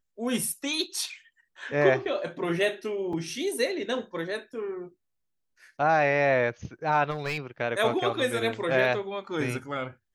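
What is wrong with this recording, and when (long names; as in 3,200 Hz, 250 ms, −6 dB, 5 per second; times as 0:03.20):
0:03.13: drop-out 3.2 ms
0:07.10–0:07.38: clipping −25.5 dBFS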